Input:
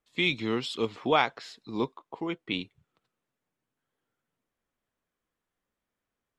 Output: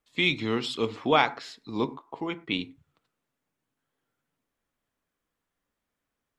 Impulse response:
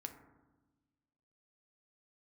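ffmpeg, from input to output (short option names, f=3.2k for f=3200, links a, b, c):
-filter_complex "[0:a]asplit=2[a][b];[b]equalizer=f=450:w=1.5:g=-3.5[c];[1:a]atrim=start_sample=2205,afade=t=out:st=0.17:d=0.01,atrim=end_sample=7938[d];[c][d]afir=irnorm=-1:irlink=0,volume=2dB[e];[a][e]amix=inputs=2:normalize=0,volume=-2.5dB"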